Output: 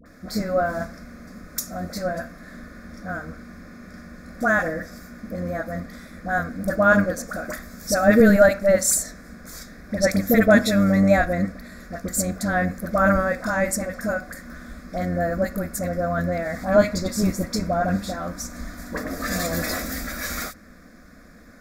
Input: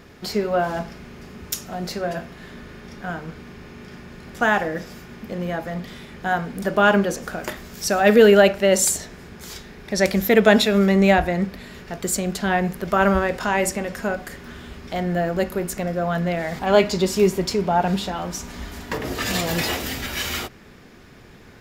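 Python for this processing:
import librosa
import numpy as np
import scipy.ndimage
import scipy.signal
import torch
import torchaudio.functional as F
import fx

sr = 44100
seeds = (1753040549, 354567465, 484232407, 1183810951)

y = fx.octave_divider(x, sr, octaves=1, level_db=-3.0)
y = fx.fixed_phaser(y, sr, hz=590.0, stages=8)
y = fx.dispersion(y, sr, late='highs', ms=59.0, hz=1000.0)
y = y * librosa.db_to_amplitude(1.0)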